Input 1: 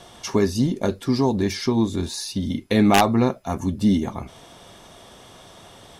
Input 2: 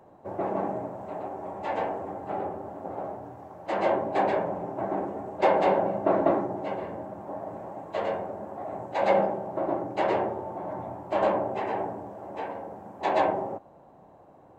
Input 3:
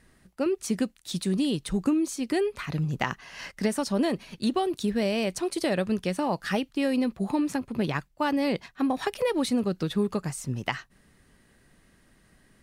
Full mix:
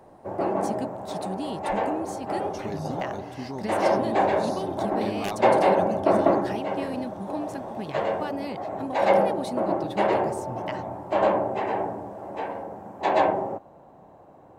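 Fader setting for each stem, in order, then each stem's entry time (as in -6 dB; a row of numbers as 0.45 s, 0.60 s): -15.5 dB, +3.0 dB, -8.0 dB; 2.30 s, 0.00 s, 0.00 s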